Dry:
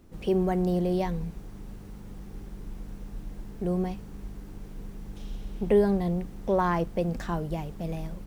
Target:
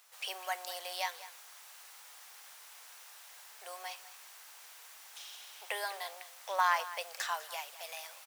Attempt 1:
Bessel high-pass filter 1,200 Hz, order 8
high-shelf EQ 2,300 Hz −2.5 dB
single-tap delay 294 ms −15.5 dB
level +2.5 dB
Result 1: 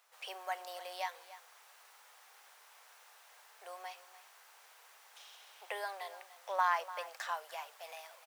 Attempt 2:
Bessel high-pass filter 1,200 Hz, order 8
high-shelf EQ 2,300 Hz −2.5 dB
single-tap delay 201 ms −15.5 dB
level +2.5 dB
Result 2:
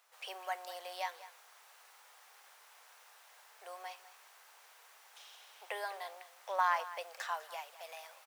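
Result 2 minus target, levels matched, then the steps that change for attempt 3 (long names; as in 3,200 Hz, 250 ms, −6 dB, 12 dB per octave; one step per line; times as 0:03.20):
4,000 Hz band −5.0 dB
change: high-shelf EQ 2,300 Hz +8 dB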